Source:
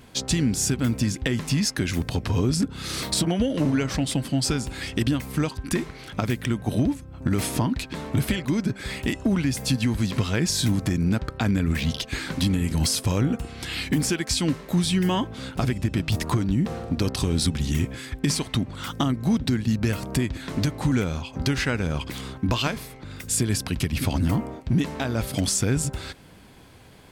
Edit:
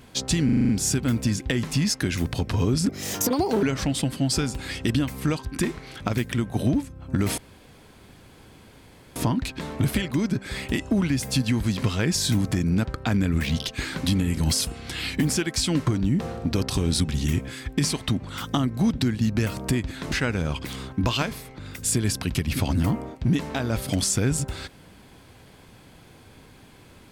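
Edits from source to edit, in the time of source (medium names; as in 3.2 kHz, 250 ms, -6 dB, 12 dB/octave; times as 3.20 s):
0.45 s: stutter 0.04 s, 7 plays
2.65–3.75 s: speed 149%
7.50 s: insert room tone 1.78 s
13.01–13.40 s: delete
14.60–16.33 s: delete
20.58–21.57 s: delete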